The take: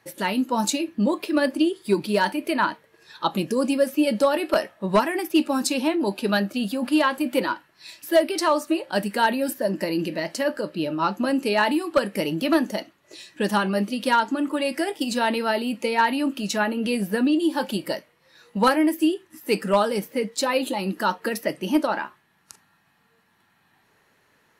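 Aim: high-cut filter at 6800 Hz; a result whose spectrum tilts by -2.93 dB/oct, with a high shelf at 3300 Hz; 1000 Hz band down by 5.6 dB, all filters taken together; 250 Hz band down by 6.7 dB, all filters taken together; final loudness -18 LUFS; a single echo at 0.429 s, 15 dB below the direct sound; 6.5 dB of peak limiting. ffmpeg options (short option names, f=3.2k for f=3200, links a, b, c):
-af "lowpass=6.8k,equalizer=f=250:t=o:g=-8.5,equalizer=f=1k:t=o:g=-6,highshelf=f=3.3k:g=-3,alimiter=limit=-19dB:level=0:latency=1,aecho=1:1:429:0.178,volume=12dB"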